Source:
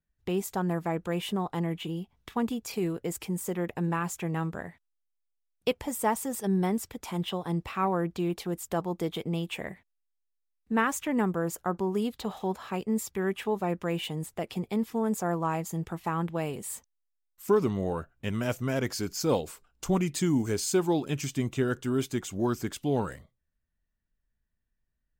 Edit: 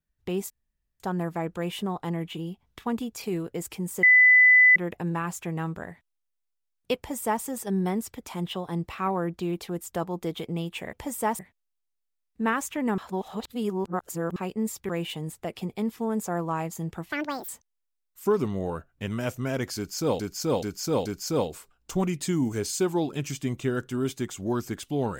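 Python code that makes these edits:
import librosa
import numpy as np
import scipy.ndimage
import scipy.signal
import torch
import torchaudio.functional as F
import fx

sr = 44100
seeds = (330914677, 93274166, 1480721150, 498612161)

y = fx.edit(x, sr, fx.insert_room_tone(at_s=0.5, length_s=0.5),
    fx.insert_tone(at_s=3.53, length_s=0.73, hz=2000.0, db=-12.5),
    fx.duplicate(start_s=5.74, length_s=0.46, to_s=9.7),
    fx.reverse_span(start_s=11.29, length_s=1.38),
    fx.cut(start_s=13.2, length_s=0.63),
    fx.speed_span(start_s=16.06, length_s=0.65, speed=1.78),
    fx.repeat(start_s=18.99, length_s=0.43, count=4), tone=tone)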